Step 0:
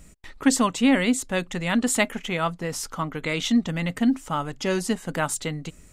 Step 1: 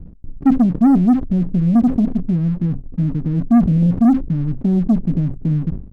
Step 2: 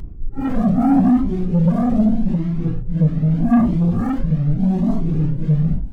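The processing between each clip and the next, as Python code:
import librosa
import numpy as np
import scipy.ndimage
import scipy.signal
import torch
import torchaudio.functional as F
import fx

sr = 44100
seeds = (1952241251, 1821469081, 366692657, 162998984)

y1 = scipy.signal.sosfilt(scipy.signal.cheby2(4, 80, 1500.0, 'lowpass', fs=sr, output='sos'), x)
y1 = fx.leveller(y1, sr, passes=2)
y1 = fx.sustainer(y1, sr, db_per_s=110.0)
y1 = y1 * 10.0 ** (8.0 / 20.0)
y2 = fx.phase_scramble(y1, sr, seeds[0], window_ms=200)
y2 = 10.0 ** (-12.5 / 20.0) * np.tanh(y2 / 10.0 ** (-12.5 / 20.0))
y2 = fx.comb_cascade(y2, sr, direction='rising', hz=0.81)
y2 = y2 * 10.0 ** (7.5 / 20.0)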